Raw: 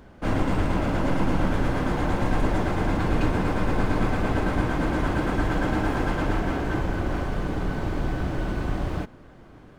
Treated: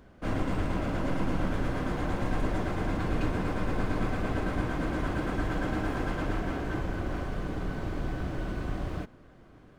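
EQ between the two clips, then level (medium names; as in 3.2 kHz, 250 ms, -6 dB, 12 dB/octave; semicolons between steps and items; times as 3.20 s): band-stop 870 Hz, Q 12; -6.0 dB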